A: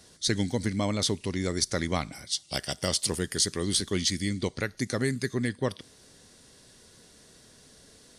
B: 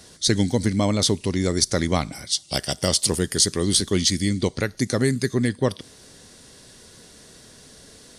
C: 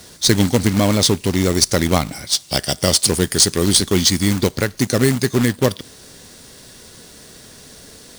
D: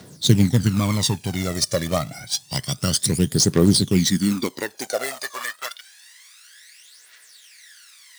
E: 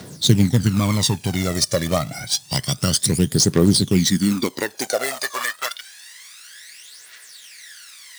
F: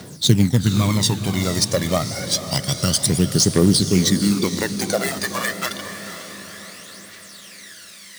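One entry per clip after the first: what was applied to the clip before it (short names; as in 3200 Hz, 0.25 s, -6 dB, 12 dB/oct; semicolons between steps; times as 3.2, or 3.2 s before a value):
dynamic EQ 1900 Hz, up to -4 dB, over -44 dBFS, Q 0.8; gain +7.5 dB
companded quantiser 4-bit; gain +5 dB
phaser 0.28 Hz, delay 1.8 ms, feedback 67%; high-pass sweep 130 Hz -> 1900 Hz, 3.9–5.9; gain -9 dB
in parallel at +3 dB: compressor, threshold -27 dBFS, peak gain reduction 16.5 dB; on the sum: crackle 470/s -48 dBFS; gain -1.5 dB
diffused feedback echo 0.494 s, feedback 54%, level -10 dB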